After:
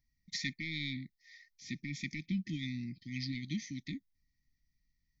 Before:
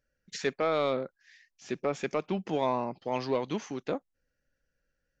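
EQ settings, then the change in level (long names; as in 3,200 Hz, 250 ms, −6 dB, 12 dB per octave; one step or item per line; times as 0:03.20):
linear-phase brick-wall band-stop 370–1,800 Hz
phaser with its sweep stopped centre 1,900 Hz, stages 8
+3.0 dB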